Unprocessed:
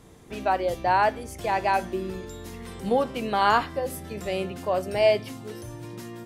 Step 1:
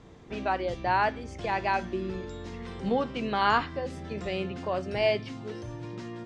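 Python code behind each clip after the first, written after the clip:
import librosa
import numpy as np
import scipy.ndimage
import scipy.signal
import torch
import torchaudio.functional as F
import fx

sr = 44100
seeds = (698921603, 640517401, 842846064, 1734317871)

y = fx.dynamic_eq(x, sr, hz=630.0, q=0.94, threshold_db=-35.0, ratio=4.0, max_db=-6)
y = scipy.signal.sosfilt(scipy.signal.bessel(6, 4400.0, 'lowpass', norm='mag', fs=sr, output='sos'), y)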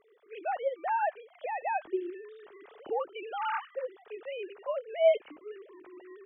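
y = fx.sine_speech(x, sr)
y = y * librosa.db_to_amplitude(-3.5)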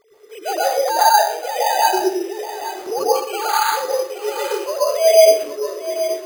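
y = x + 10.0 ** (-11.5 / 20.0) * np.pad(x, (int(825 * sr / 1000.0), 0))[:len(x)]
y = fx.rev_plate(y, sr, seeds[0], rt60_s=0.58, hf_ratio=0.8, predelay_ms=105, drr_db=-7.0)
y = np.repeat(y[::8], 8)[:len(y)]
y = y * librosa.db_to_amplitude(7.5)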